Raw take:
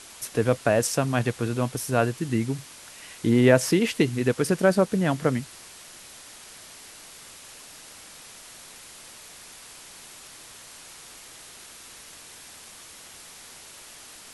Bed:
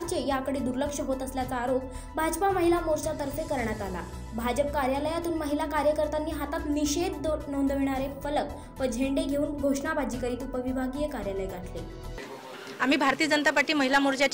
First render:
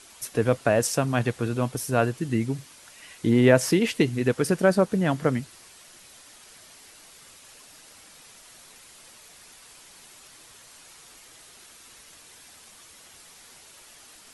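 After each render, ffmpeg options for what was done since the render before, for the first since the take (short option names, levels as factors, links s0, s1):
-af "afftdn=nr=6:nf=-46"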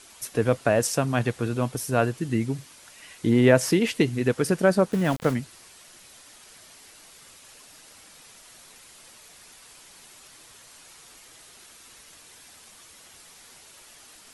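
-filter_complex "[0:a]asplit=3[s0][s1][s2];[s0]afade=t=out:st=4.91:d=0.02[s3];[s1]aeval=exprs='val(0)*gte(abs(val(0)),0.0266)':c=same,afade=t=in:st=4.91:d=0.02,afade=t=out:st=5.33:d=0.02[s4];[s2]afade=t=in:st=5.33:d=0.02[s5];[s3][s4][s5]amix=inputs=3:normalize=0"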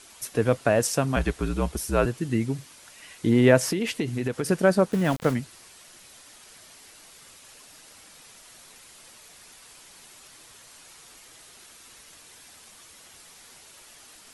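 -filter_complex "[0:a]asettb=1/sr,asplit=3[s0][s1][s2];[s0]atrim=end=1.164[s3];[s1]atrim=start=1.16:end=2.06,asetpts=PTS-STARTPTS,afade=t=in:d=0.004:c=qsin,afade=t=out:st=0.896:d=0.004:c=qsin,afreqshift=-59[s4];[s2]atrim=start=2.056[s5];[s3][s4]acrossfade=d=0.004:c1=hsin:c2=qsin[s6];[s6][s5]acrossfade=d=0.004:c1=qsin:c2=hsin,asettb=1/sr,asplit=3[s7][s8][s9];[s7]atrim=end=3.584[s10];[s8]atrim=start=3.58:end=4.49,asetpts=PTS-STARTPTS,afade=t=in:d=0.004:c=qsin,afade=t=out:st=0.906:d=0.004:c=qsin,acompressor=threshold=0.0794:ratio=6:attack=3.2:release=140:knee=1:detection=peak[s11];[s9]atrim=start=4.486[s12];[s10][s11]acrossfade=d=0.004:c1=hsin:c2=qsin[s13];[s13][s12]acrossfade=d=0.004:c1=qsin:c2=hsin"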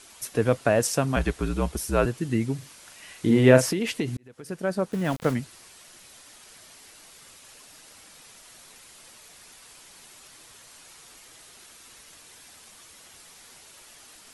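-filter_complex "[0:a]asettb=1/sr,asplit=3[s0][s1][s2];[s0]atrim=end=2.584[s3];[s1]atrim=start=2.58:end=3.66,asetpts=PTS-STARTPTS,afade=t=in:d=0.004:c=qsin,afade=t=out:st=1.076:d=0.004:c=qsin,asplit=2[s4][s5];[s5]adelay=39,volume=0.501[s6];[s4][s6]amix=inputs=2:normalize=0,atrim=end_sample=47628[s7];[s2]atrim=start=3.656[s8];[s3][s7]acrossfade=d=0.004:c1=hsin:c2=qsin[s9];[s9][s8]acrossfade=d=0.004:c1=qsin:c2=hsin,asplit=2[s10][s11];[s10]atrim=end=4.17,asetpts=PTS-STARTPTS,afade=t=out:st=4.166:d=0.004:c=hsin[s12];[s11]atrim=start=4.17,asetpts=PTS-STARTPTS,afade=t=in:d=1.24[s13];[s12][s13]concat=n=2:v=0:a=1"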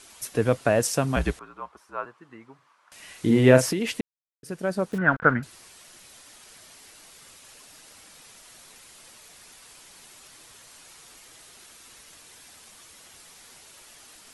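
-filter_complex "[0:a]asettb=1/sr,asplit=3[s0][s1][s2];[s0]atrim=end=1.394[s3];[s1]atrim=start=1.39:end=2.92,asetpts=PTS-STARTPTS,afade=t=in:d=0.004:c=qsin,afade=t=out:st=1.526:d=0.004:c=qsin,bandpass=f=1100:t=q:w=3.3[s4];[s2]atrim=start=2.916[s5];[s3][s4]acrossfade=d=0.004:c1=hsin:c2=qsin[s6];[s6][s5]acrossfade=d=0.004:c1=qsin:c2=hsin,asettb=1/sr,asplit=3[s7][s8][s9];[s7]atrim=end=4.984[s10];[s8]atrim=start=4.98:end=5.43,asetpts=PTS-STARTPTS,afade=t=in:d=0.004:c=qsin,afade=t=out:st=0.446:d=0.004:c=qsin,lowpass=f=1500:t=q:w=11[s11];[s9]atrim=start=5.426[s12];[s10][s11]acrossfade=d=0.004:c1=hsin:c2=qsin[s13];[s13][s12]acrossfade=d=0.004:c1=qsin:c2=hsin,asplit=3[s14][s15][s16];[s14]atrim=end=4.01,asetpts=PTS-STARTPTS,afade=t=out:st=4.006:d=0.004:c=hsin[s17];[s15]atrim=start=4.01:end=4.43,asetpts=PTS-STARTPTS,volume=0[s18];[s16]atrim=start=4.43,asetpts=PTS-STARTPTS,afade=t=in:d=0.004:c=hsin[s19];[s17][s18][s19]concat=n=3:v=0:a=1"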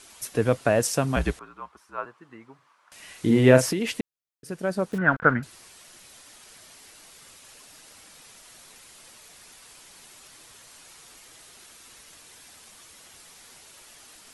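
-filter_complex "[0:a]asettb=1/sr,asplit=3[s0][s1][s2];[s0]atrim=end=1.494[s3];[s1]atrim=start=1.49:end=1.98,asetpts=PTS-STARTPTS,afade=t=in:d=0.004:c=qsin,afade=t=out:st=0.486:d=0.004:c=qsin,equalizer=f=570:t=o:w=1.2:g=-5.5[s4];[s2]atrim=start=1.976[s5];[s3][s4]acrossfade=d=0.004:c1=hsin:c2=qsin[s6];[s6][s5]acrossfade=d=0.004:c1=qsin:c2=hsin"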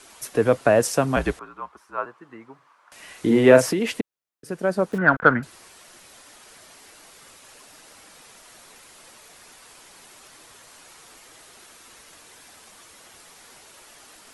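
-filter_complex "[0:a]acrossover=split=240|1900[s0][s1][s2];[s0]alimiter=level_in=1.06:limit=0.0631:level=0:latency=1,volume=0.944[s3];[s1]acontrast=30[s4];[s3][s4][s2]amix=inputs=3:normalize=0"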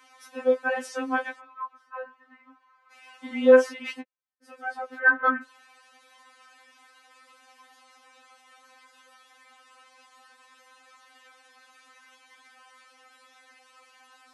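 -af "bandpass=f=1300:t=q:w=0.77:csg=0,afftfilt=real='re*3.46*eq(mod(b,12),0)':imag='im*3.46*eq(mod(b,12),0)':win_size=2048:overlap=0.75"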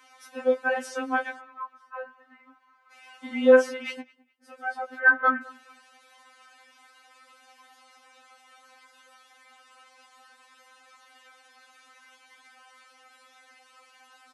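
-filter_complex "[0:a]asplit=2[s0][s1];[s1]adelay=13,volume=0.237[s2];[s0][s2]amix=inputs=2:normalize=0,asplit=2[s3][s4];[s4]adelay=209,lowpass=f=2900:p=1,volume=0.0708,asplit=2[s5][s6];[s6]adelay=209,lowpass=f=2900:p=1,volume=0.33[s7];[s3][s5][s7]amix=inputs=3:normalize=0"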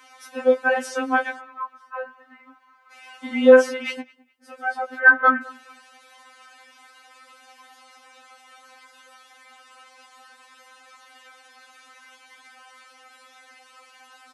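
-af "volume=1.88,alimiter=limit=0.794:level=0:latency=1"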